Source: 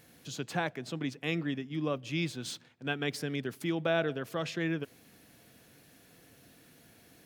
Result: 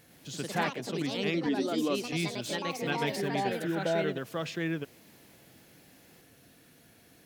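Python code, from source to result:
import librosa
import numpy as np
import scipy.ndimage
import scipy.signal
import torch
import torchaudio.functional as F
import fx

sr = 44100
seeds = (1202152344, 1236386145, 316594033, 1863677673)

y = fx.spec_repair(x, sr, seeds[0], start_s=3.5, length_s=0.49, low_hz=1100.0, high_hz=3600.0, source='both')
y = fx.echo_pitch(y, sr, ms=109, semitones=3, count=3, db_per_echo=-3.0)
y = fx.low_shelf_res(y, sr, hz=200.0, db=-6.5, q=3.0, at=(1.46, 2.13))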